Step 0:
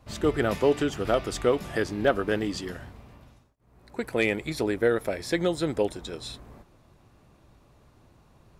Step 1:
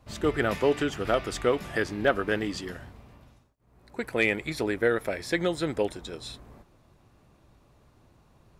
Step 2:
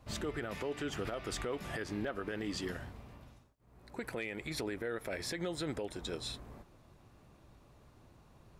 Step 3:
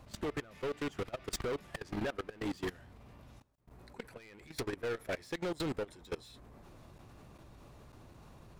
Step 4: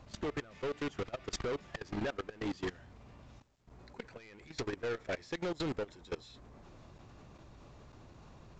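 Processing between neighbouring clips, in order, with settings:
dynamic EQ 1900 Hz, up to +5 dB, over -42 dBFS, Q 0.95; gain -2 dB
compressor 10:1, threshold -29 dBFS, peak gain reduction 12.5 dB; limiter -27 dBFS, peak gain reduction 9.5 dB; gain -1 dB
hard clip -39.5 dBFS, distortion -8 dB; level quantiser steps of 21 dB; gain +8 dB
µ-law 128 kbps 16000 Hz

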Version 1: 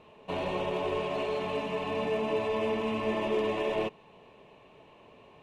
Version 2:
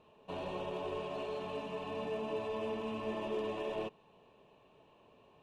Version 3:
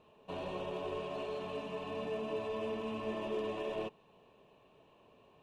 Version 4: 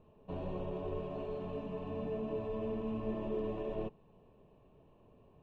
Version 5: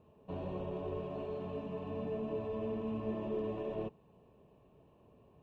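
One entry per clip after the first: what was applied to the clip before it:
bell 2100 Hz -10.5 dB 0.24 oct; gain -8 dB
notch 870 Hz, Q 28
tilt -4 dB/oct; gain -5 dB
HPF 49 Hz

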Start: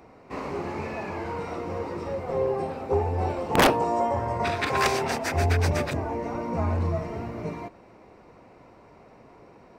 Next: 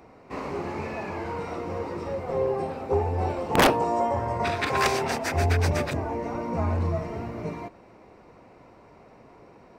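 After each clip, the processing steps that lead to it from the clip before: nothing audible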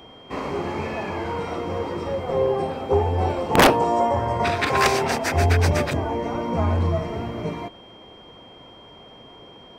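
whine 3200 Hz -52 dBFS; gain +4.5 dB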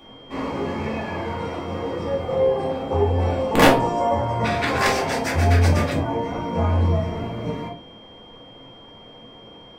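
shoebox room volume 220 m³, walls furnished, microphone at 2.4 m; gain -5 dB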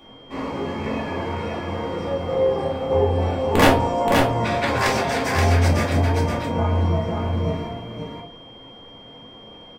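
echo 0.526 s -4 dB; gain -1 dB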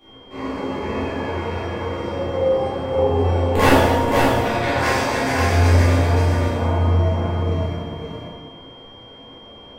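plate-style reverb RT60 1.6 s, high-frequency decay 0.8×, DRR -8.5 dB; gain -7.5 dB

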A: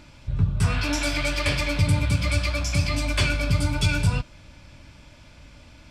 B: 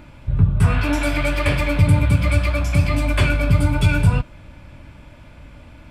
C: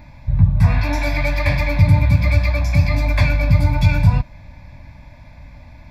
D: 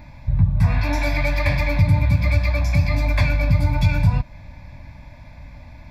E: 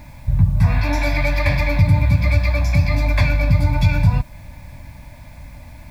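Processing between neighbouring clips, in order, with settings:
bell 5500 Hz -15 dB 1.4 oct; gain +6.5 dB
fixed phaser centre 2000 Hz, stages 8; gain +3 dB
compressor 1.5:1, threshold -18 dBFS, peak gain reduction 4.5 dB
added noise white -59 dBFS; gain +2 dB

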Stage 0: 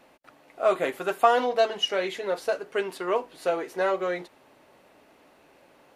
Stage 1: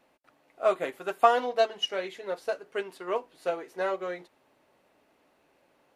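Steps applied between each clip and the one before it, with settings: upward expander 1.5:1, over -33 dBFS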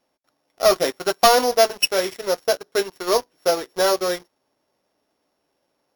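sample sorter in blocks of 8 samples; sample leveller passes 3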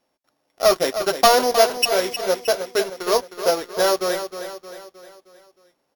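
feedback echo 0.311 s, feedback 49%, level -10 dB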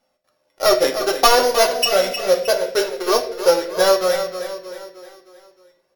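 flange 0.48 Hz, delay 1.4 ms, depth 1.2 ms, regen -33%; reverb RT60 0.65 s, pre-delay 3 ms, DRR 4.5 dB; gain +5 dB

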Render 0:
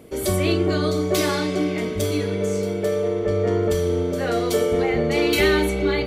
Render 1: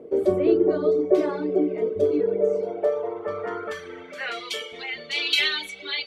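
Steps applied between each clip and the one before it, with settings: reverb removal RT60 1.4 s; band-pass sweep 440 Hz -> 3400 Hz, 2.23–4.75; gain +8 dB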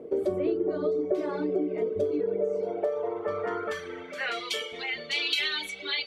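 compressor 4:1, threshold -25 dBFS, peak gain reduction 11 dB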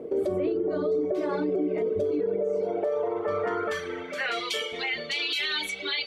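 limiter -24 dBFS, peak gain reduction 9.5 dB; gain +4.5 dB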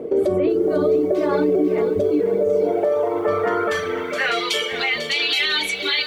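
lo-fi delay 0.497 s, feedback 35%, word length 9-bit, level -11 dB; gain +8 dB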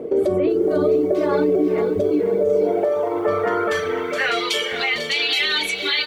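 echo 0.454 s -15.5 dB

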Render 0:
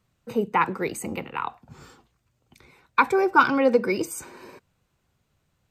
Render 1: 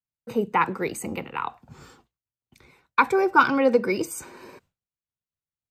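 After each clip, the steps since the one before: expander -52 dBFS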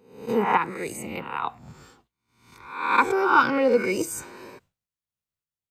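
spectral swells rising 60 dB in 0.64 s; random-step tremolo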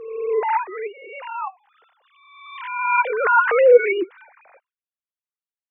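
sine-wave speech; backwards sustainer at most 49 dB/s; gain +2 dB

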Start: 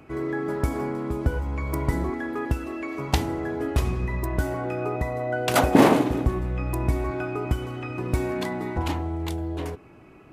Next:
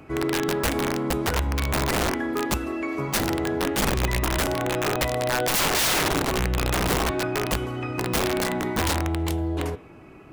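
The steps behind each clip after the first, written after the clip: wrapped overs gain 20.5 dB; de-hum 119.7 Hz, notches 33; gain +3.5 dB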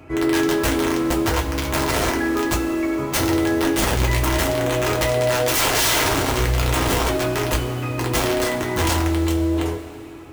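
two-slope reverb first 0.21 s, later 3 s, from -18 dB, DRR -1 dB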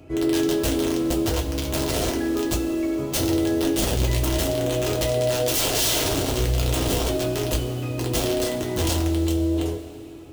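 band shelf 1400 Hz -9 dB; gain -2 dB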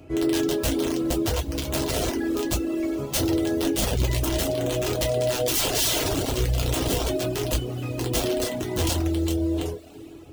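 reverb removal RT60 0.63 s

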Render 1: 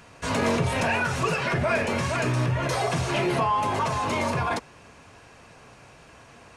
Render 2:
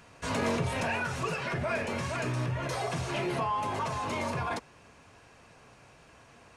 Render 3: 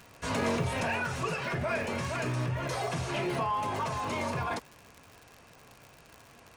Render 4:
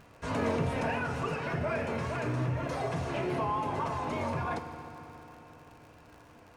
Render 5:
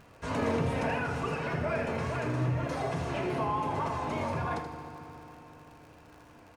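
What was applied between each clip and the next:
vocal rider 2 s; gain -7 dB
crackle 100/s -39 dBFS
vibrato 3.4 Hz 38 cents; high shelf 2400 Hz -10.5 dB; FDN reverb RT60 3.9 s, high-frequency decay 0.8×, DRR 7 dB
echo 79 ms -8.5 dB

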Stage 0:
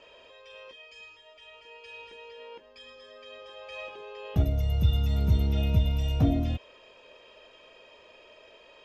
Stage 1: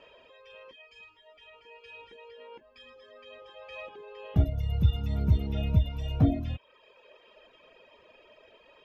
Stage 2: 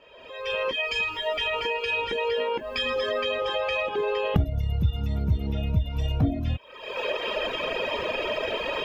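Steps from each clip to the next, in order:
low shelf 140 Hz -6.5 dB; reverb removal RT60 1 s; tone controls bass +6 dB, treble -10 dB
recorder AGC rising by 50 dB/s; gain -1 dB

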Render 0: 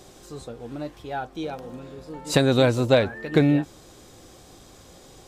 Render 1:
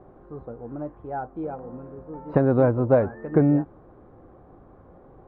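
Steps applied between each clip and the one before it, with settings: LPF 1300 Hz 24 dB/oct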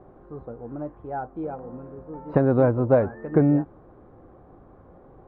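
nothing audible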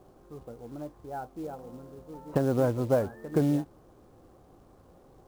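companded quantiser 6-bit; gain -6.5 dB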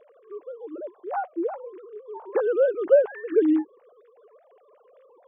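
sine-wave speech; gain +5.5 dB

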